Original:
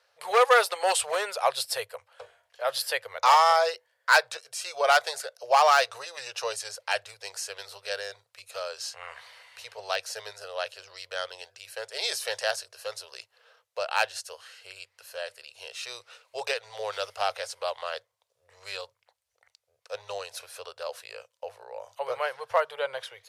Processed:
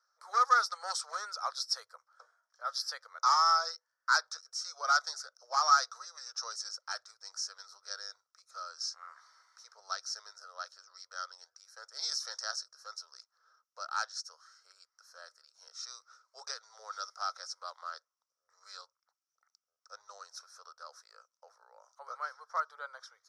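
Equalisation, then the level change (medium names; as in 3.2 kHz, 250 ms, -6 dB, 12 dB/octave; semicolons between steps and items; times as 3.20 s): dynamic bell 4.2 kHz, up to +7 dB, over -43 dBFS, Q 0.95; two resonant band-passes 2.7 kHz, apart 2.1 oct; 0.0 dB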